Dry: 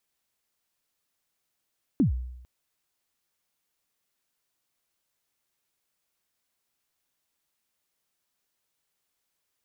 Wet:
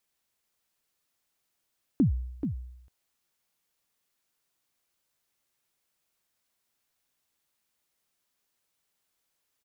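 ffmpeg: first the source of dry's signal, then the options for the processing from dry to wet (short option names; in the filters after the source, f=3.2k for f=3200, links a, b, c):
-f lavfi -i "aevalsrc='0.158*pow(10,-3*t/0.86)*sin(2*PI*(320*0.119/log(62/320)*(exp(log(62/320)*min(t,0.119)/0.119)-1)+62*max(t-0.119,0)))':d=0.45:s=44100"
-af "aecho=1:1:432:0.398"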